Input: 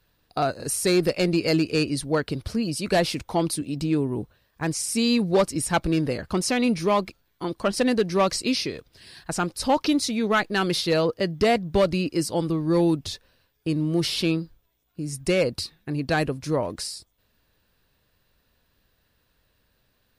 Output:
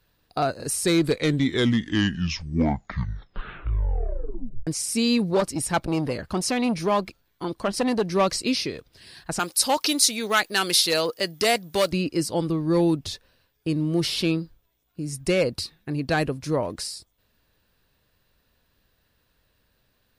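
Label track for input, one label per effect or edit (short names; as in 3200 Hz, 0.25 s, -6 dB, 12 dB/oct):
0.680000	0.680000	tape stop 3.99 s
5.300000	8.030000	core saturation saturates under 400 Hz
9.390000	11.920000	RIAA curve recording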